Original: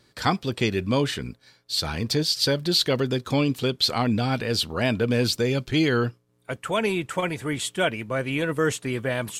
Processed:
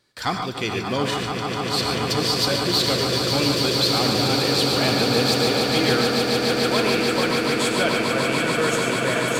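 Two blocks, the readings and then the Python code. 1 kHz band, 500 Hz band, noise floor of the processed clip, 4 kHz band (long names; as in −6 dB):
+6.0 dB, +4.0 dB, −28 dBFS, +6.0 dB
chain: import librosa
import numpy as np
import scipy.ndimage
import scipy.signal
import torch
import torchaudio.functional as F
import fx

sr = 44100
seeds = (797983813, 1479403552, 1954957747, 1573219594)

p1 = fx.low_shelf(x, sr, hz=360.0, db=-7.5)
p2 = fx.leveller(p1, sr, passes=1)
p3 = p2 + fx.echo_swell(p2, sr, ms=146, loudest=8, wet_db=-8.0, dry=0)
p4 = fx.rev_gated(p3, sr, seeds[0], gate_ms=160, shape='rising', drr_db=4.5)
y = p4 * 10.0 ** (-3.0 / 20.0)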